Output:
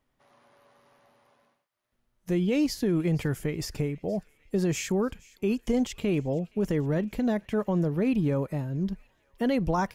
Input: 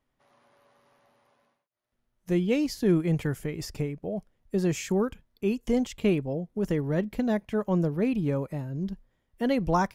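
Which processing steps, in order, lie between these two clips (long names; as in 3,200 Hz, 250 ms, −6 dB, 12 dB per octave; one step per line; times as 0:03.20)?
brickwall limiter −20 dBFS, peak gain reduction 7.5 dB
on a send: delay with a high-pass on its return 469 ms, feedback 61%, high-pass 1,400 Hz, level −22 dB
on the sum: level +2.5 dB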